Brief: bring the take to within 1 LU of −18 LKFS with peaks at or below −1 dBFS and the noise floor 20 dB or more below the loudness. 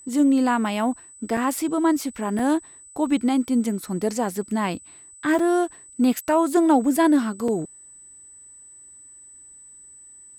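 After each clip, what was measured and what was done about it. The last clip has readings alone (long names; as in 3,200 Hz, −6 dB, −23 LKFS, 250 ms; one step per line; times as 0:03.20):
number of dropouts 4; longest dropout 3.2 ms; interfering tone 8,000 Hz; level of the tone −44 dBFS; integrated loudness −22.5 LKFS; sample peak −7.5 dBFS; target loudness −18.0 LKFS
→ repair the gap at 0:01.37/0:02.39/0:05.39/0:07.48, 3.2 ms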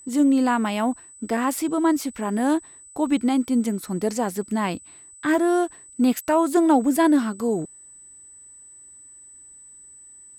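number of dropouts 0; interfering tone 8,000 Hz; level of the tone −44 dBFS
→ notch filter 8,000 Hz, Q 30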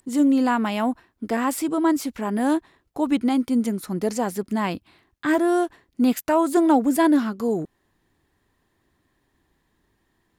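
interfering tone none found; integrated loudness −22.5 LKFS; sample peak −7.5 dBFS; target loudness −18.0 LKFS
→ level +4.5 dB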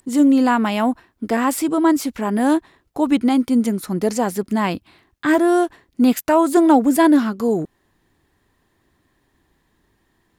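integrated loudness −18.0 LKFS; sample peak −3.0 dBFS; background noise floor −66 dBFS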